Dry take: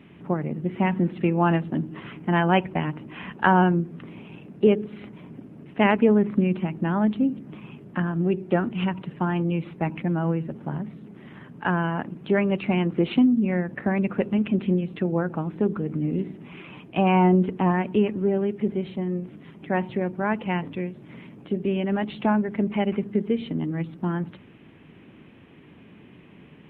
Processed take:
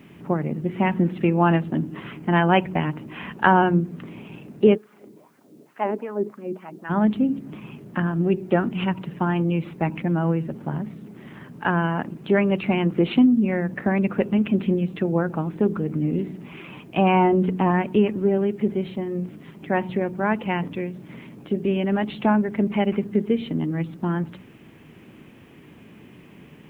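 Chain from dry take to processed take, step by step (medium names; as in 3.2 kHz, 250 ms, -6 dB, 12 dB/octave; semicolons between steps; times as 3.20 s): de-hum 91.32 Hz, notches 3; 4.76–6.89 s: LFO band-pass sine 1.7 Hz -> 4.7 Hz 340–1500 Hz; word length cut 12-bit, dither triangular; trim +2.5 dB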